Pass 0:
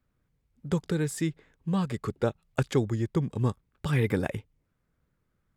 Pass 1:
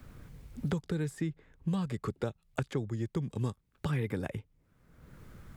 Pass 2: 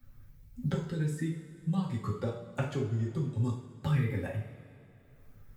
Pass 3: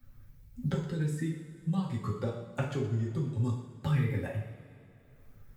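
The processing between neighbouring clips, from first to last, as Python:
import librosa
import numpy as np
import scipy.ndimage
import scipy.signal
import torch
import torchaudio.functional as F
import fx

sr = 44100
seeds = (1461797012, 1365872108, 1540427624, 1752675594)

y1 = fx.low_shelf(x, sr, hz=200.0, db=3.5)
y1 = fx.band_squash(y1, sr, depth_pct=100)
y1 = y1 * librosa.db_to_amplitude(-8.0)
y2 = fx.bin_expand(y1, sr, power=1.5)
y2 = fx.rev_double_slope(y2, sr, seeds[0], early_s=0.51, late_s=3.1, knee_db=-18, drr_db=-4.5)
y2 = y2 * librosa.db_to_amplitude(-2.5)
y3 = y2 + 10.0 ** (-14.0 / 20.0) * np.pad(y2, (int(120 * sr / 1000.0), 0))[:len(y2)]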